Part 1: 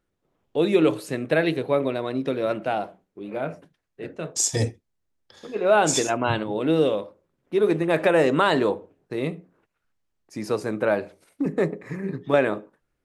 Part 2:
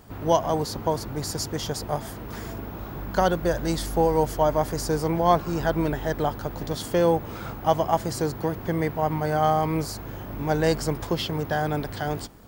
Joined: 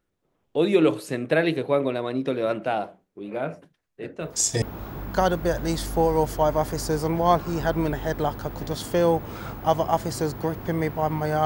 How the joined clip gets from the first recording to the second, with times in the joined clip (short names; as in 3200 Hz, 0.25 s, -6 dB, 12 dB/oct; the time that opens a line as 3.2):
part 1
4.21 add part 2 from 2.21 s 0.41 s -13 dB
4.62 switch to part 2 from 2.62 s